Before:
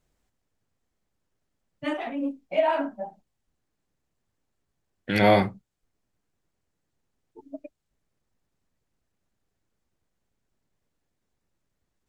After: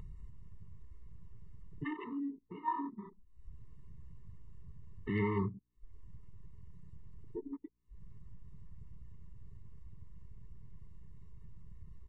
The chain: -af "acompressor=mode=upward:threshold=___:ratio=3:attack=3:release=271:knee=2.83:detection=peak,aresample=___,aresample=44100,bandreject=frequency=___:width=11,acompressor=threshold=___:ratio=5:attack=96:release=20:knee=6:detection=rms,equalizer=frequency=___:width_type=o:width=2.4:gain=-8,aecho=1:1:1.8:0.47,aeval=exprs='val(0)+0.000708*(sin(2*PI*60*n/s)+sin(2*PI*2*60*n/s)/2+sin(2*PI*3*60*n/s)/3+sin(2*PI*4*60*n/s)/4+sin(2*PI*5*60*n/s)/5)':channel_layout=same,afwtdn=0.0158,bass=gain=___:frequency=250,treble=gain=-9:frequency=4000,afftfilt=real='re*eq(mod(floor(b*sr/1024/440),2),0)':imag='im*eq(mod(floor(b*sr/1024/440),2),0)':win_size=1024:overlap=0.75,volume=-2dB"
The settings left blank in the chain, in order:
-23dB, 22050, 1200, -29dB, 3900, -2